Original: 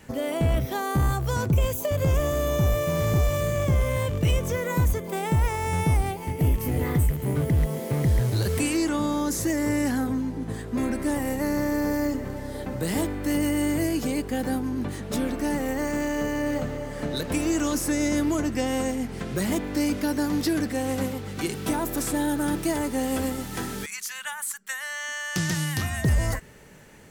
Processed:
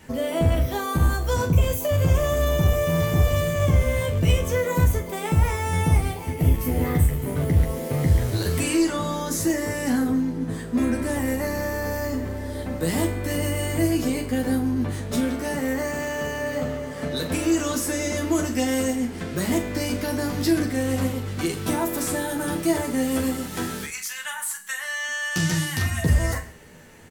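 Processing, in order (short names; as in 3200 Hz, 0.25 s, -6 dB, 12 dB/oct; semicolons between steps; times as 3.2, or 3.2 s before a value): 18.34–18.92 high shelf 4600 Hz -> 9100 Hz +7 dB; early reflections 12 ms -4 dB, 42 ms -8 dB; non-linear reverb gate 0.22 s falling, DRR 10 dB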